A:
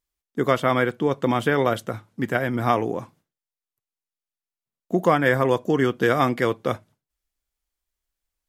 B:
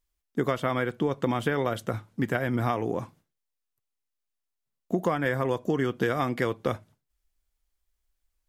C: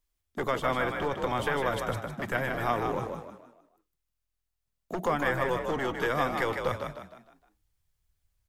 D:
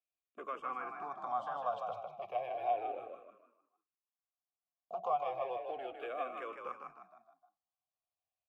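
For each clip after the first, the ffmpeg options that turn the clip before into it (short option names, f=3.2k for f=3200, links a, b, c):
-af "lowshelf=f=66:g=11,acompressor=threshold=-22dB:ratio=6"
-filter_complex "[0:a]acrossover=split=410[a][b];[a]aeval=exprs='0.0299*(abs(mod(val(0)/0.0299+3,4)-2)-1)':c=same[c];[c][b]amix=inputs=2:normalize=0,asplit=6[d][e][f][g][h][i];[e]adelay=154,afreqshift=41,volume=-5.5dB[j];[f]adelay=308,afreqshift=82,volume=-13.5dB[k];[g]adelay=462,afreqshift=123,volume=-21.4dB[l];[h]adelay=616,afreqshift=164,volume=-29.4dB[m];[i]adelay=770,afreqshift=205,volume=-37.3dB[n];[d][j][k][l][m][n]amix=inputs=6:normalize=0"
-filter_complex "[0:a]asplit=3[a][b][c];[a]bandpass=f=730:t=q:w=8,volume=0dB[d];[b]bandpass=f=1.09k:t=q:w=8,volume=-6dB[e];[c]bandpass=f=2.44k:t=q:w=8,volume=-9dB[f];[d][e][f]amix=inputs=3:normalize=0,asplit=2[g][h];[h]afreqshift=-0.33[i];[g][i]amix=inputs=2:normalize=1,volume=3dB"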